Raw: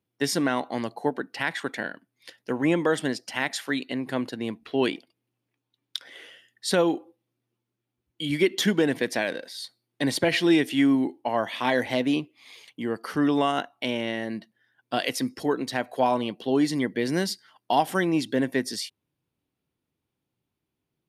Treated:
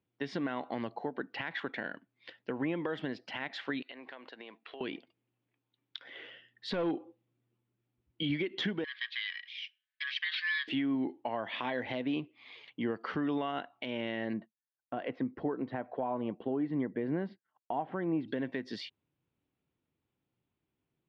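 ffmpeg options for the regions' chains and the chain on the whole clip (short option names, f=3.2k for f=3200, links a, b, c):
-filter_complex "[0:a]asettb=1/sr,asplit=3[a][b][c];[a]atrim=end=3.824[d];[b]atrim=start=3.82:end=4.81,asetpts=PTS-STARTPTS,afade=t=in:d=0.004:c=qsin,afade=t=out:st=0.986:d=0.004:c=qsin,highpass=610,acompressor=threshold=-40dB:ratio=20:attack=3.2:release=140:knee=1:detection=peak[e];[c]atrim=start=4.806[f];[d][e]acrossfade=d=0.004:c1=hsin:c2=qsin[g];[g][f]acrossfade=d=0.004:c1=qsin:c2=hsin,asettb=1/sr,asplit=3[h][i][j];[h]atrim=end=6.174[k];[i]atrim=start=6.17:end=8.23,asetpts=PTS-STARTPTS,afade=t=in:d=0.004:c=qsin,afade=t=out:st=2.056:d=0.004:c=qsin,lowshelf=f=220:g=6.5,asoftclip=type=hard:threshold=-16.5dB[l];[j]atrim=start=8.226[m];[k][l]acrossfade=d=0.004:c1=hsin:c2=qsin[n];[n][m]acrossfade=d=0.004:c1=qsin:c2=hsin,asettb=1/sr,asplit=3[o][p][q];[o]atrim=end=8.844[r];[p]atrim=start=8.84:end=10.68,asetpts=PTS-STARTPTS,afade=t=in:d=0.004:c=qsin,afade=t=out:st=1.836:d=0.004:c=qsin,highshelf=f=3.5k:g=8,aeval=exprs='val(0)*sin(2*PI*1400*n/s)':c=same,asuperpass=centerf=3000:order=8:qfactor=0.94[s];[q]atrim=start=10.676[t];[r][s]acrossfade=d=0.004:c1=hsin:c2=qsin[u];[u][t]acrossfade=d=0.004:c1=qsin:c2=hsin,asettb=1/sr,asplit=3[v][w][x];[v]atrim=end=14.334[y];[w]atrim=start=14.33:end=18.28,asetpts=PTS-STARTPTS,afade=t=in:d=0.004:c=qsin,afade=t=out:st=3.946:d=0.004:c=qsin,lowpass=1.3k,agate=range=-33dB:threshold=-50dB:ratio=3:release=100:detection=peak[z];[x]atrim=start=18.276[aa];[y][z]acrossfade=d=0.004:c1=hsin:c2=qsin[ab];[ab][aa]acrossfade=d=0.004:c1=qsin:c2=hsin,lowpass=f=3.5k:w=0.5412,lowpass=f=3.5k:w=1.3066,acompressor=threshold=-26dB:ratio=6,alimiter=limit=-21.5dB:level=0:latency=1:release=153,volume=-2dB"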